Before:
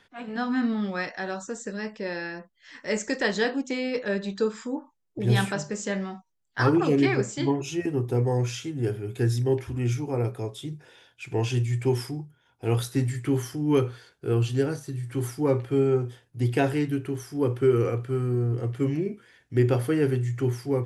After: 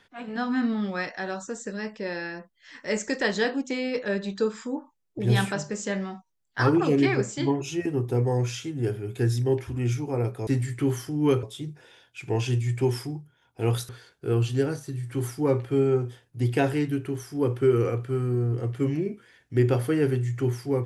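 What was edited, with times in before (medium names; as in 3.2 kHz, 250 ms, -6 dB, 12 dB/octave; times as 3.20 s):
12.93–13.89 s: move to 10.47 s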